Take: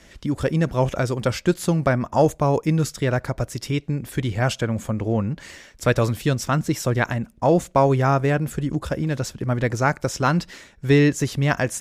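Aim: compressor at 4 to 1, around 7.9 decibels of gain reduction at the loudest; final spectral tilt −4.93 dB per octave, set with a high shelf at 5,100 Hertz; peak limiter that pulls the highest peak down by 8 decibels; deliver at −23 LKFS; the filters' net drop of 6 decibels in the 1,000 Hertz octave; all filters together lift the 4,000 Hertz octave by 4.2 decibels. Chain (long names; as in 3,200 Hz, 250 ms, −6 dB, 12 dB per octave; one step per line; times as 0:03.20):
parametric band 1,000 Hz −9 dB
parametric band 4,000 Hz +3 dB
high-shelf EQ 5,100 Hz +6 dB
downward compressor 4 to 1, threshold −22 dBFS
level +6.5 dB
brickwall limiter −13 dBFS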